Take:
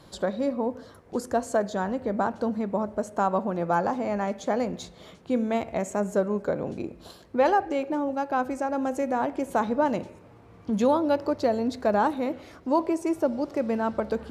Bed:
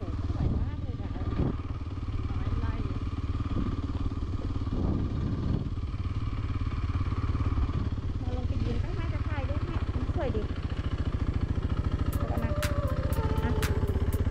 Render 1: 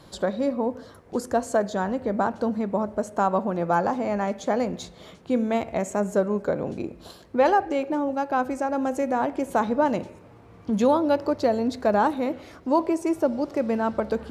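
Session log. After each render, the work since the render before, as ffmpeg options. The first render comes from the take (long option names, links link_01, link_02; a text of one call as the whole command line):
ffmpeg -i in.wav -af "volume=2dB" out.wav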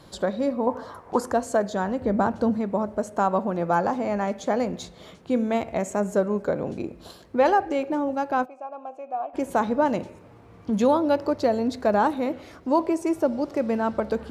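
ffmpeg -i in.wav -filter_complex "[0:a]asettb=1/sr,asplit=3[link_01][link_02][link_03];[link_01]atrim=end=0.674[link_04];[link_02]atrim=start=0.67:end=1.32,asetpts=PTS-STARTPTS,afade=type=in:duration=0.004:curve=qsin,afade=type=out:start_time=0.646:duration=0.004:curve=qsin,equalizer=frequency=970:width=1.2:gain=15[link_05];[link_03]atrim=start=1.316[link_06];[link_04][link_05]acrossfade=duration=0.004:curve1=hsin:curve2=qsin[link_07];[link_07][link_06]acrossfade=duration=0.004:curve1=qsin:curve2=hsin,asettb=1/sr,asplit=3[link_08][link_09][link_10];[link_08]atrim=end=2.014[link_11];[link_09]atrim=start=2.01:end=2.57,asetpts=PTS-STARTPTS,afade=type=in:duration=0.004:curve=qsin,afade=type=out:start_time=0.556:duration=0.004:curve=qsin,lowshelf=frequency=210:gain=8.5[link_12];[link_10]atrim=start=2.566[link_13];[link_11][link_12]acrossfade=duration=0.004:curve1=hsin:curve2=qsin[link_14];[link_14][link_13]acrossfade=duration=0.004:curve1=qsin:curve2=hsin,asplit=3[link_15][link_16][link_17];[link_15]afade=type=out:start_time=8.44:duration=0.02[link_18];[link_16]asplit=3[link_19][link_20][link_21];[link_19]bandpass=frequency=730:width_type=q:width=8,volume=0dB[link_22];[link_20]bandpass=frequency=1090:width_type=q:width=8,volume=-6dB[link_23];[link_21]bandpass=frequency=2440:width_type=q:width=8,volume=-9dB[link_24];[link_22][link_23][link_24]amix=inputs=3:normalize=0,afade=type=in:start_time=8.44:duration=0.02,afade=type=out:start_time=9.33:duration=0.02[link_25];[link_17]afade=type=in:start_time=9.33:duration=0.02[link_26];[link_18][link_25][link_26]amix=inputs=3:normalize=0" out.wav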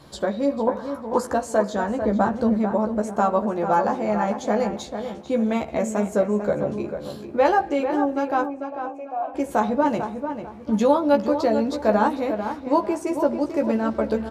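ffmpeg -i in.wav -filter_complex "[0:a]asplit=2[link_01][link_02];[link_02]adelay=14,volume=-4dB[link_03];[link_01][link_03]amix=inputs=2:normalize=0,asplit=2[link_04][link_05];[link_05]adelay=445,lowpass=frequency=2500:poles=1,volume=-8dB,asplit=2[link_06][link_07];[link_07]adelay=445,lowpass=frequency=2500:poles=1,volume=0.31,asplit=2[link_08][link_09];[link_09]adelay=445,lowpass=frequency=2500:poles=1,volume=0.31,asplit=2[link_10][link_11];[link_11]adelay=445,lowpass=frequency=2500:poles=1,volume=0.31[link_12];[link_04][link_06][link_08][link_10][link_12]amix=inputs=5:normalize=0" out.wav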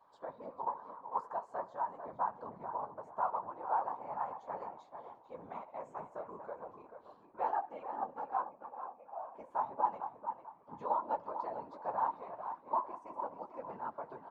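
ffmpeg -i in.wav -af "bandpass=frequency=960:width_type=q:width=6:csg=0,afftfilt=real='hypot(re,im)*cos(2*PI*random(0))':imag='hypot(re,im)*sin(2*PI*random(1))':win_size=512:overlap=0.75" out.wav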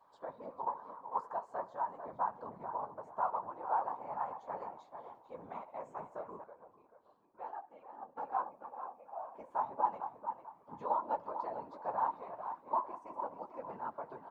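ffmpeg -i in.wav -filter_complex "[0:a]asplit=3[link_01][link_02][link_03];[link_01]atrim=end=6.442[link_04];[link_02]atrim=start=6.438:end=8.172,asetpts=PTS-STARTPTS,volume=-10.5dB[link_05];[link_03]atrim=start=8.168[link_06];[link_04][link_05]acrossfade=duration=0.004:curve1=hsin:curve2=hsin[link_07];[link_07][link_06]acrossfade=duration=0.004:curve1=hsin:curve2=hsin" out.wav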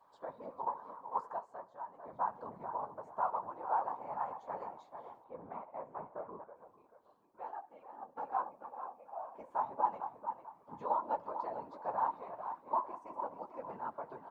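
ffmpeg -i in.wav -filter_complex "[0:a]asettb=1/sr,asplit=3[link_01][link_02][link_03];[link_01]atrim=end=5.244[link_04];[link_02]atrim=start=5.24:end=6.56,asetpts=PTS-STARTPTS,afade=type=in:duration=0.004:curve=qsin,afade=type=out:start_time=1.316:duration=0.004:curve=qsin,lowpass=1800[link_05];[link_03]atrim=start=6.556[link_06];[link_04][link_05]acrossfade=duration=0.004:curve1=hsin:curve2=qsin[link_07];[link_07][link_06]acrossfade=duration=0.004:curve1=qsin:curve2=hsin,asplit=3[link_08][link_09][link_10];[link_08]atrim=end=1.59,asetpts=PTS-STARTPTS,afade=type=out:start_time=1.27:duration=0.32:silence=0.375837[link_11];[link_09]atrim=start=1.59:end=1.93,asetpts=PTS-STARTPTS,volume=-8.5dB[link_12];[link_10]atrim=start=1.93,asetpts=PTS-STARTPTS,afade=type=in:duration=0.32:silence=0.375837[link_13];[link_11][link_12][link_13]concat=n=3:v=0:a=1" out.wav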